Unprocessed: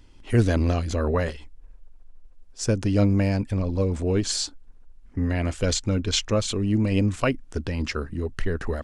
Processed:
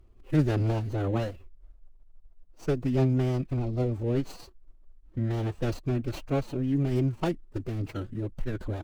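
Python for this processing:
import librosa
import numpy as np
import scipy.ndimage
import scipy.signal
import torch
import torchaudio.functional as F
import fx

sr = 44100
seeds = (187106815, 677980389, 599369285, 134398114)

y = scipy.ndimage.median_filter(x, 25, mode='constant')
y = fx.pitch_keep_formants(y, sr, semitones=4.5)
y = F.gain(torch.from_numpy(y), -4.0).numpy()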